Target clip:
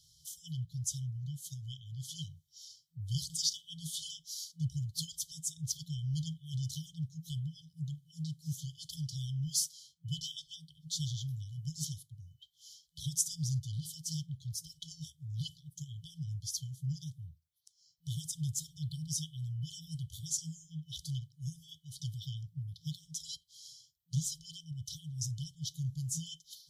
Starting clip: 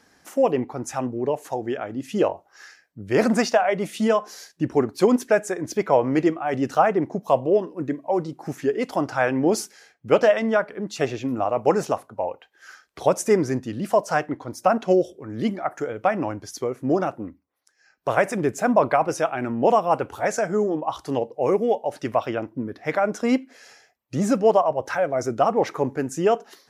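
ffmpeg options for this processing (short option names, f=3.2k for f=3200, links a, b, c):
-filter_complex "[0:a]afftfilt=real='re*(1-between(b*sr/4096,170,3000))':imag='im*(1-between(b*sr/4096,170,3000))':win_size=4096:overlap=0.75,acrossover=split=170|510|2600[a][b][c][d];[b]acompressor=threshold=-45dB:ratio=6[e];[a][e][c][d]amix=inputs=4:normalize=0"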